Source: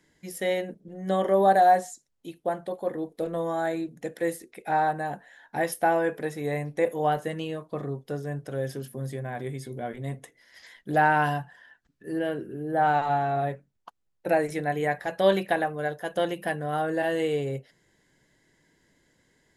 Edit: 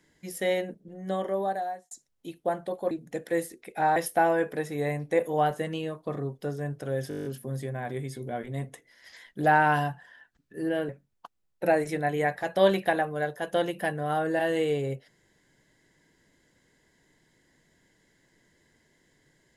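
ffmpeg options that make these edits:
-filter_complex "[0:a]asplit=13[a][b][c][d][e][f][g][h][i][j][k][l][m];[a]atrim=end=1.91,asetpts=PTS-STARTPTS,afade=t=out:st=0.59:d=1.32[n];[b]atrim=start=1.91:end=2.912,asetpts=PTS-STARTPTS,afade=t=in:d=0.004:c=hsin[o];[c]atrim=start=3.808:end=4.862[p];[d]atrim=start=5.618:end=8.772[q];[e]atrim=start=8.748:end=8.772[r];[f]atrim=start=8.748:end=8.772[s];[g]atrim=start=8.748:end=8.772[t];[h]atrim=start=8.748:end=8.772[u];[i]atrim=start=8.748:end=8.772[v];[j]atrim=start=8.748:end=8.772[w];[k]atrim=start=8.748:end=8.772[x];[l]atrim=start=8.748:end=12.392[y];[m]atrim=start=13.518[z];[n][o]concat=n=2:v=0:a=1[aa];[aa][p]acrossfade=d=0.004:c1=hsin:c2=hsin[ab];[ab][q]acrossfade=d=0.004:c1=hsin:c2=hsin[ac];[ac][r]acrossfade=d=0.004:c1=hsin:c2=hsin[ad];[ad][s]acrossfade=d=0.004:c1=hsin:c2=hsin[ae];[ae][t]acrossfade=d=0.004:c1=hsin:c2=hsin[af];[af][u]acrossfade=d=0.004:c1=hsin:c2=hsin[ag];[ag][v]acrossfade=d=0.004:c1=hsin:c2=hsin[ah];[ah][w]acrossfade=d=0.004:c1=hsin:c2=hsin[ai];[ai][x]acrossfade=d=0.004:c1=hsin:c2=hsin[aj];[aj][y]acrossfade=d=0.004:c1=hsin:c2=hsin[ak];[ak][z]acrossfade=d=0.004:c1=hsin:c2=hsin"

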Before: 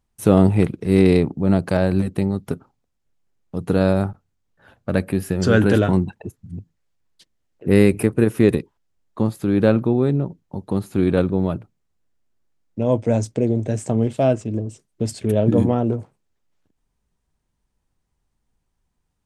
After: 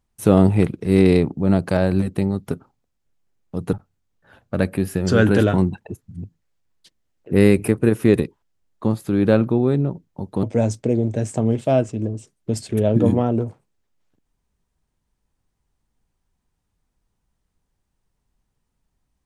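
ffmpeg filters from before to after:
-filter_complex "[0:a]asplit=3[a][b][c];[a]atrim=end=3.732[d];[b]atrim=start=4.078:end=10.782[e];[c]atrim=start=12.948[f];[d][e]acrossfade=d=0.004:c1=hsin:c2=hsin[g];[g][f]acrossfade=d=0.004:c1=hsin:c2=hsin"

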